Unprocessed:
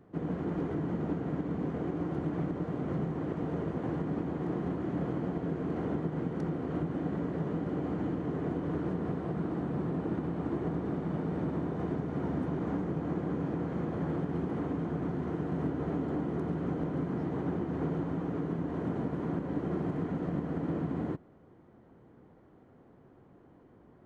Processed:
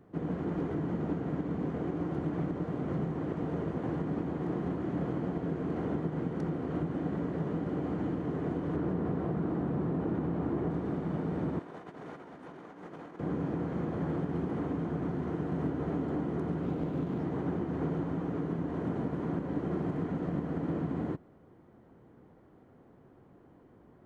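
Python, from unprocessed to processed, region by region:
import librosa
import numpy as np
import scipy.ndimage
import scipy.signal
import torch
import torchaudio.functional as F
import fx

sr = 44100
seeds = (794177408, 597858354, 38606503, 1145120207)

y = fx.chain(x, sr, fx.high_shelf(hz=2600.0, db=-7.5),
    fx.env_flatten(amount_pct=50), at=(8.76, 10.7))
y = fx.chain(y, sr, fx.highpass(hz=1000.0, slope=6),
    fx.over_compress(threshold_db=-46.0, ratio=-0.5), at=(11.59, 13.2))
y = fx.chain(y, sr, fx.median_filter(points=25),
    fx.resample_linear(factor=2), at=(16.63, 17.2))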